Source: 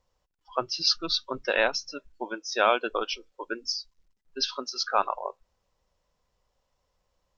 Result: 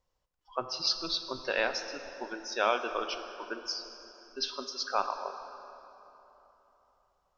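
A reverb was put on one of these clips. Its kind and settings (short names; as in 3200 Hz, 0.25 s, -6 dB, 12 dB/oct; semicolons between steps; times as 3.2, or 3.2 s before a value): plate-style reverb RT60 3.5 s, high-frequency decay 0.65×, DRR 7.5 dB; gain -5.5 dB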